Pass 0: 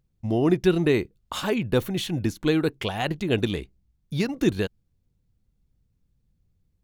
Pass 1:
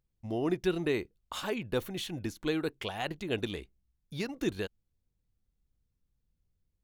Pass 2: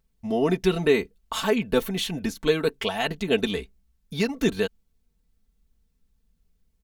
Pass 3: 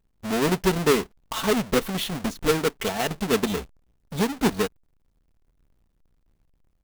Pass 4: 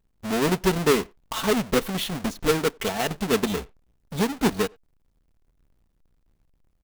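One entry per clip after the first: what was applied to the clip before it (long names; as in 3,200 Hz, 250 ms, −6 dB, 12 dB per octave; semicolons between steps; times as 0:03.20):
parametric band 140 Hz −6 dB 2.1 octaves; level −7 dB
comb filter 4.5 ms, depth 77%; level +7.5 dB
each half-wave held at its own peak; level −4 dB
far-end echo of a speakerphone 90 ms, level −25 dB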